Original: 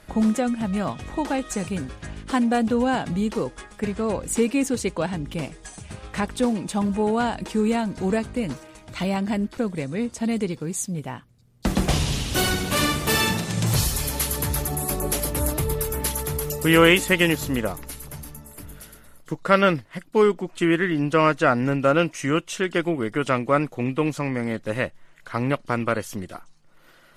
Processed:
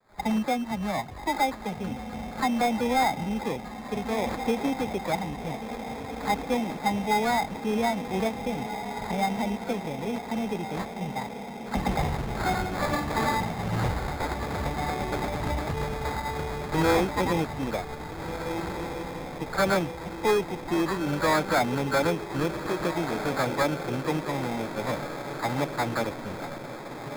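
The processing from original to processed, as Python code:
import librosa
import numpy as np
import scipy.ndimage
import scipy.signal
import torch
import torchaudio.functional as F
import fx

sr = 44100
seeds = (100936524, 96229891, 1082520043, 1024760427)

p1 = fx.spec_quant(x, sr, step_db=15)
p2 = fx.peak_eq(p1, sr, hz=820.0, db=13.5, octaves=0.48)
p3 = fx.dispersion(p2, sr, late='lows', ms=99.0, hz=2500.0)
p4 = p3 + fx.echo_diffused(p3, sr, ms=1674, feedback_pct=63, wet_db=-9.5, dry=0)
p5 = fx.sample_hold(p4, sr, seeds[0], rate_hz=2900.0, jitter_pct=0)
p6 = np.clip(p5, -10.0 ** (-11.0 / 20.0), 10.0 ** (-11.0 / 20.0))
p7 = fx.high_shelf(p6, sr, hz=4200.0, db=-8.5)
y = F.gain(torch.from_numpy(p7), -6.0).numpy()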